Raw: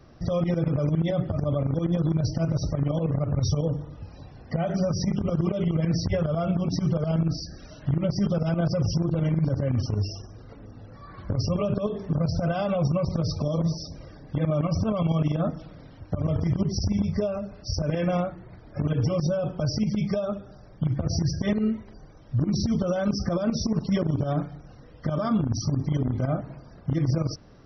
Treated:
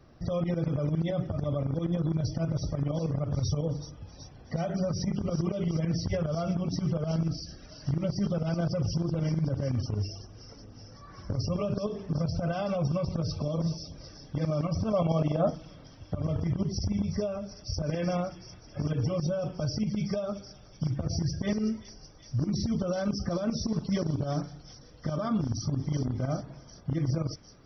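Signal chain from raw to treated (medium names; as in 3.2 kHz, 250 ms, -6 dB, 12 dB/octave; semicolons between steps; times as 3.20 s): 14.93–15.55 s: peaking EQ 640 Hz +9 dB 1.2 oct; feedback echo behind a high-pass 376 ms, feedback 75%, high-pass 3.9 kHz, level -8 dB; trim -4.5 dB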